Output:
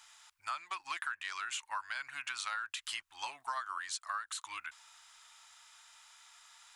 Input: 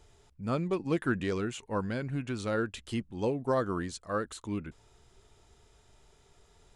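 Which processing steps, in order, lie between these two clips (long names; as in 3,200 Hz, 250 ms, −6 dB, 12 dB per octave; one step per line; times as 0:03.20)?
inverse Chebyshev high-pass filter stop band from 510 Hz, stop band 40 dB
downward compressor 6 to 1, threshold −45 dBFS, peak gain reduction 14 dB
level +9.5 dB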